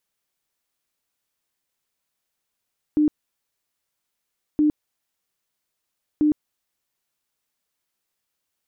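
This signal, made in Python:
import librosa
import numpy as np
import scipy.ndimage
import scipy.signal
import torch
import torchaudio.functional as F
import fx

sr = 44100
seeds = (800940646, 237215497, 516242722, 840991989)

y = fx.tone_burst(sr, hz=301.0, cycles=33, every_s=1.62, bursts=3, level_db=-14.5)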